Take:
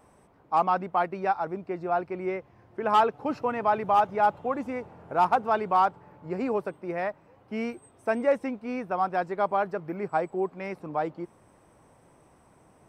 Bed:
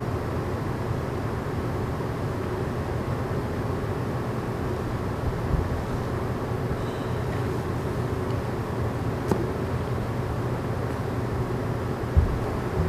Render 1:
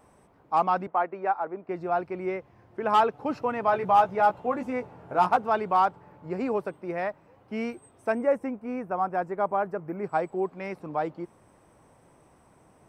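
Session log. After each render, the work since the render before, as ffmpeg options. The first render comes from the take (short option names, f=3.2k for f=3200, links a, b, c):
-filter_complex "[0:a]asettb=1/sr,asplit=3[a][b][c];[a]atrim=end=0.874[d];[b]atrim=start=0.87:end=1.69,asetpts=PTS-STARTPTS,afade=t=in:d=0.004:c=qsin,afade=t=out:st=0.816:d=0.004:c=qsin,acrossover=split=260 2400:gain=0.178 1 0.126[e][f][g];[e][f][g]amix=inputs=3:normalize=0[h];[c]atrim=start=1.686[i];[d][h]acrossfade=d=0.004:c1=hsin:c2=qsin[j];[j][i]acrossfade=d=0.004:c1=qsin:c2=hsin,asettb=1/sr,asplit=3[k][l][m];[k]atrim=end=3.664[n];[l]atrim=start=3.66:end=5.37,asetpts=PTS-STARTPTS,afade=t=in:d=0.004:c=qsin,afade=t=out:st=1.706:d=0.004:c=qsin,asplit=2[o][p];[p]adelay=16,volume=-6dB[q];[o][q]amix=inputs=2:normalize=0,atrim=end_sample=75411[r];[m]atrim=start=5.366[s];[n][r]acrossfade=d=0.004:c1=hsin:c2=qsin[t];[t][s]acrossfade=d=0.004:c1=qsin:c2=hsin,asettb=1/sr,asplit=3[u][v][w];[u]atrim=end=8.124[x];[v]atrim=start=8.12:end=10.04,asetpts=PTS-STARTPTS,afade=t=in:d=0.004:c=qsin,afade=t=out:st=1.916:d=0.004:c=qsin,equalizer=f=4k:t=o:w=1.2:g=-14.5[y];[w]atrim=start=10.036[z];[x][y]acrossfade=d=0.004:c1=hsin:c2=qsin[aa];[aa][z]acrossfade=d=0.004:c1=qsin:c2=hsin"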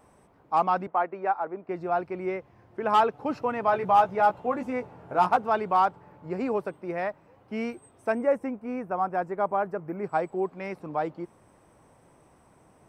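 -af anull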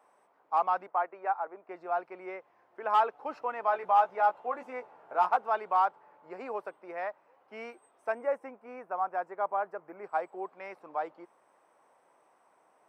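-af "highpass=730,highshelf=f=2.2k:g=-11.5"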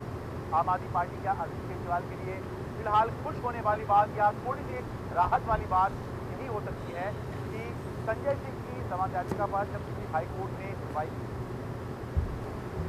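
-filter_complex "[1:a]volume=-9.5dB[a];[0:a][a]amix=inputs=2:normalize=0"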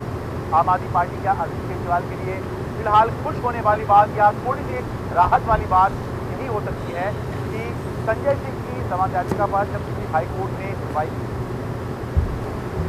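-af "volume=10dB"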